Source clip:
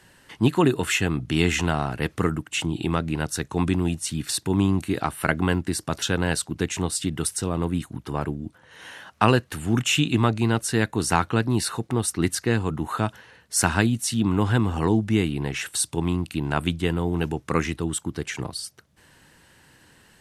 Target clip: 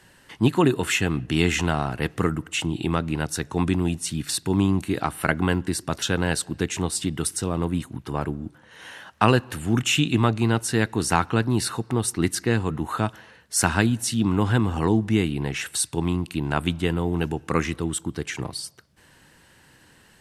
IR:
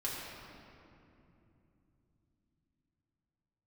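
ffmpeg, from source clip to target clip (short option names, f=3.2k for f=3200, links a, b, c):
-filter_complex "[0:a]asplit=2[a][b];[1:a]atrim=start_sample=2205,afade=t=out:st=0.32:d=0.01,atrim=end_sample=14553,lowpass=6.5k[c];[b][c]afir=irnorm=-1:irlink=0,volume=-25.5dB[d];[a][d]amix=inputs=2:normalize=0"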